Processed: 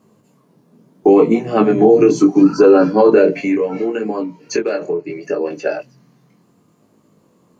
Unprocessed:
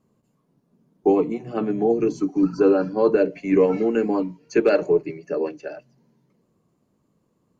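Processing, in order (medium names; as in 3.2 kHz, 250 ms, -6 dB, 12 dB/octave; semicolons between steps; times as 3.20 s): high-pass 180 Hz 6 dB/octave; 3.30–5.51 s: compression 8:1, threshold -31 dBFS, peak gain reduction 17.5 dB; 5.90–6.74 s: spectral replace 230–1300 Hz after; chorus 0.72 Hz, delay 18 ms, depth 6.4 ms; loudness maximiser +18.5 dB; trim -1 dB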